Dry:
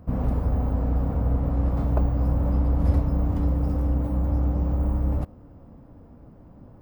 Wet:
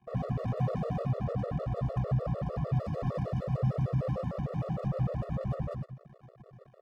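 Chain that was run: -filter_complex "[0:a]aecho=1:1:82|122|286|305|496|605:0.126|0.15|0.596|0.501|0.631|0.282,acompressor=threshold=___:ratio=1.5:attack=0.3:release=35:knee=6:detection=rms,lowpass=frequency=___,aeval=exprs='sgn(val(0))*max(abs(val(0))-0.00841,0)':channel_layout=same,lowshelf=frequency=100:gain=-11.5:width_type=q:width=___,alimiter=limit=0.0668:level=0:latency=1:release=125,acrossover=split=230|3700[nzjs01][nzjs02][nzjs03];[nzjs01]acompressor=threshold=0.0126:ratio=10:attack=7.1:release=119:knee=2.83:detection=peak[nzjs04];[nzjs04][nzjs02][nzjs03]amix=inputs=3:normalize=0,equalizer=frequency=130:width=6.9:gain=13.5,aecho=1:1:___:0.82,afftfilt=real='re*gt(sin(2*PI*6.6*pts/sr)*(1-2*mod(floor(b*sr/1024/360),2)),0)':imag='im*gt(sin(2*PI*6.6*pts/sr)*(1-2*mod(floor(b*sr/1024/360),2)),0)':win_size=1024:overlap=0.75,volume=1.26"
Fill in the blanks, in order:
0.0794, 6500, 1.5, 1.7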